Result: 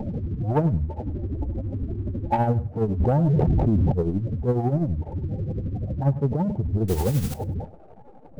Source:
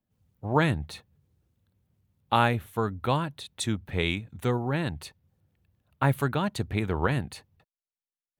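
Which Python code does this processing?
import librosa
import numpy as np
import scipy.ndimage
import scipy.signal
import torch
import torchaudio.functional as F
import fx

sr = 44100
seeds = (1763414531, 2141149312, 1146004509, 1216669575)

p1 = x + 0.5 * 10.0 ** (-23.5 / 20.0) * np.sign(x)
p2 = scipy.signal.sosfilt(scipy.signal.cheby1(8, 1.0, 900.0, 'lowpass', fs=sr, output='sos'), p1)
p3 = fx.spec_gate(p2, sr, threshold_db=-15, keep='strong')
p4 = fx.comb(p3, sr, ms=3.3, depth=0.71, at=(0.85, 2.38))
p5 = fx.leveller(p4, sr, passes=1)
p6 = 10.0 ** (-28.5 / 20.0) * np.tanh(p5 / 10.0 ** (-28.5 / 20.0))
p7 = p5 + (p6 * librosa.db_to_amplitude(-10.0))
p8 = fx.quant_dither(p7, sr, seeds[0], bits=6, dither='triangular', at=(6.88, 7.34))
p9 = p8 * (1.0 - 0.57 / 2.0 + 0.57 / 2.0 * np.cos(2.0 * np.pi * 12.0 * (np.arange(len(p8)) / sr)))
p10 = p9 + fx.echo_feedback(p9, sr, ms=101, feedback_pct=16, wet_db=-16.5, dry=0)
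y = fx.env_flatten(p10, sr, amount_pct=100, at=(3.0, 3.92))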